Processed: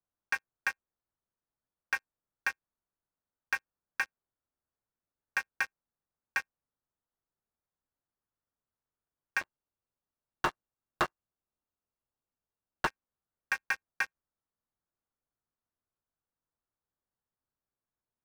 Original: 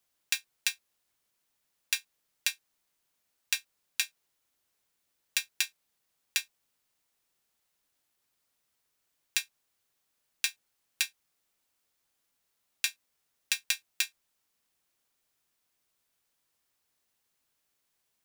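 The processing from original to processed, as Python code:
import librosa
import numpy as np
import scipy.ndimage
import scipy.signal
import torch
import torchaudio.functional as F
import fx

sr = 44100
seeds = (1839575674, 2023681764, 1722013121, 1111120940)

y = fx.sample_sort(x, sr, block=16, at=(9.41, 12.87))
y = scipy.signal.sosfilt(scipy.signal.cheby2(4, 50, 3900.0, 'lowpass', fs=sr, output='sos'), y)
y = fx.low_shelf(y, sr, hz=180.0, db=8.5)
y = fx.leveller(y, sr, passes=5)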